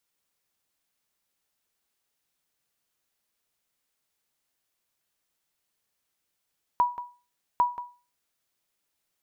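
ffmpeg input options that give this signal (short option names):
-f lavfi -i "aevalsrc='0.188*(sin(2*PI*974*mod(t,0.8))*exp(-6.91*mod(t,0.8)/0.34)+0.211*sin(2*PI*974*max(mod(t,0.8)-0.18,0))*exp(-6.91*max(mod(t,0.8)-0.18,0)/0.34))':d=1.6:s=44100"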